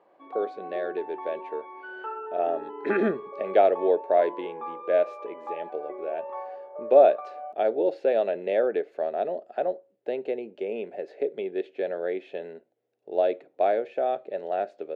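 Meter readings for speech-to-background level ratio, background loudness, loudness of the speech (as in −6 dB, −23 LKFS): 12.0 dB, −39.0 LKFS, −27.0 LKFS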